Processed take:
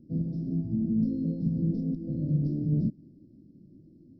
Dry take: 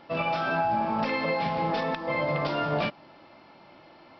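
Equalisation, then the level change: inverse Chebyshev band-stop 890–2900 Hz, stop band 70 dB; distance through air 150 m; +8.0 dB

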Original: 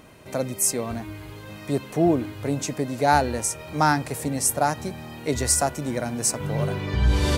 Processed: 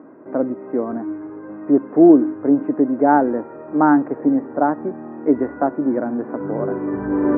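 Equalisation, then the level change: resonant high-pass 290 Hz, resonance Q 3.6; steep low-pass 1.6 kHz 36 dB/octave; distance through air 220 m; +3.0 dB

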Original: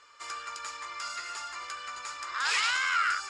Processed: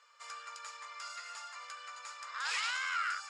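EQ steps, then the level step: brick-wall FIR high-pass 440 Hz; -7.5 dB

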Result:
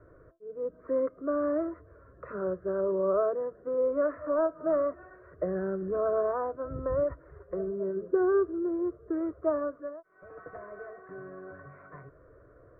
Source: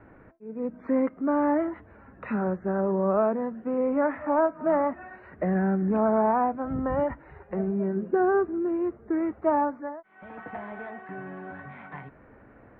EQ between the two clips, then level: peaking EQ 820 Hz -13.5 dB 0.3 oct; resonant high shelf 1.5 kHz -12.5 dB, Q 1.5; static phaser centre 850 Hz, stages 6; 0.0 dB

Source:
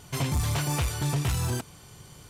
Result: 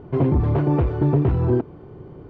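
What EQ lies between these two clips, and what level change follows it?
Bessel low-pass 850 Hz, order 2; distance through air 140 m; peaking EQ 360 Hz +13 dB 1.1 oct; +6.5 dB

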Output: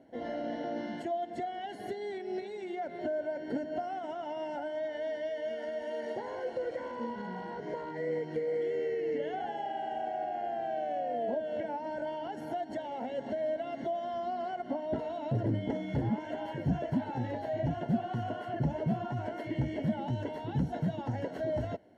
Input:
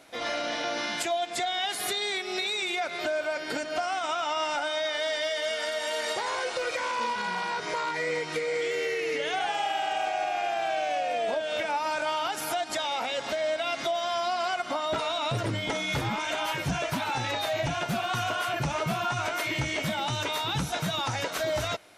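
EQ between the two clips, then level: boxcar filter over 36 samples; high-pass 46 Hz; peaking EQ 240 Hz +7.5 dB 0.4 oct; 0.0 dB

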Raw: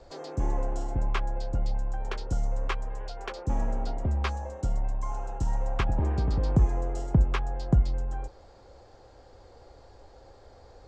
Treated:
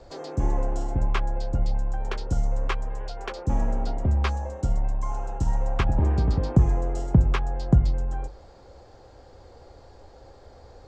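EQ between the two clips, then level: peaking EQ 110 Hz +3.5 dB 2.7 oct; hum notches 50/100/150 Hz; +2.5 dB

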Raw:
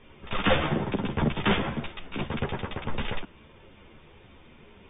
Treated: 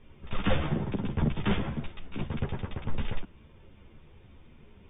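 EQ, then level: bass shelf 230 Hz +11.5 dB; -8.5 dB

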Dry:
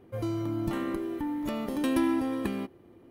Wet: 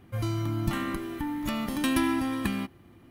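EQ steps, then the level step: peaking EQ 450 Hz -15 dB 1.3 oct; band-stop 940 Hz, Q 21; +7.5 dB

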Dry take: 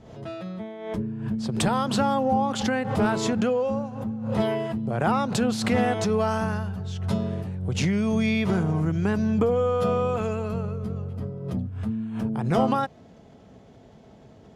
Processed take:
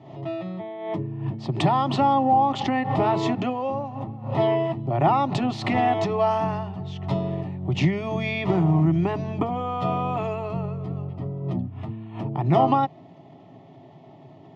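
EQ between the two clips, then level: Chebyshev band-pass 150–2500 Hz, order 2; peaking EQ 1.8 kHz +12.5 dB 0.2 oct; static phaser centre 320 Hz, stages 8; +7.5 dB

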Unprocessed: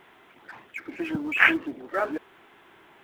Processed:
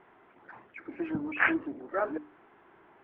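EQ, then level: low-pass 1.5 kHz 12 dB/octave; hum notches 50/100/150/200/250/300 Hz; -2.5 dB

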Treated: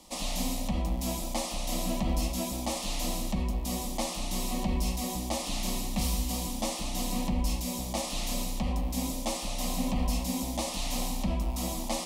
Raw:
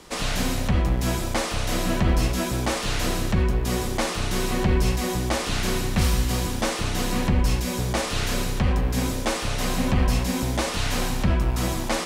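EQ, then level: treble shelf 8.8 kHz +5 dB; static phaser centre 410 Hz, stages 6; -5.0 dB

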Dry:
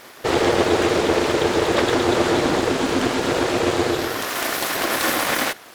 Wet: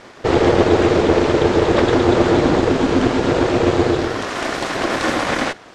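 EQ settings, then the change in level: low-pass 8.1 kHz 24 dB/octave; tilt EQ -2 dB/octave; +2.0 dB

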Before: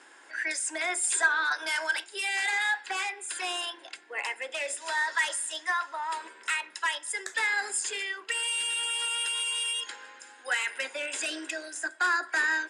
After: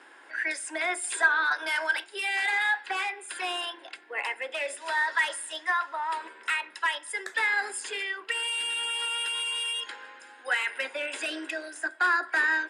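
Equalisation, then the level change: high-pass 160 Hz; peaking EQ 6.9 kHz -12.5 dB 1 oct; +2.5 dB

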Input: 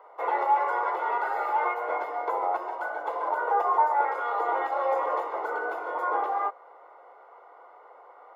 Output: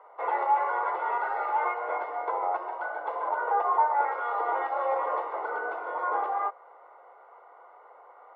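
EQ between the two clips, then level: high-pass 520 Hz 6 dB/octave; distance through air 300 m; +1.5 dB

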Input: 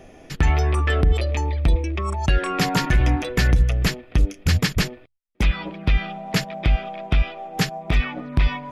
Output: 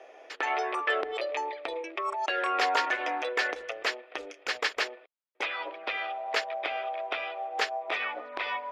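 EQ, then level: inverse Chebyshev high-pass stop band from 180 Hz, stop band 50 dB; low-pass 3 kHz 6 dB/octave; distance through air 56 m; 0.0 dB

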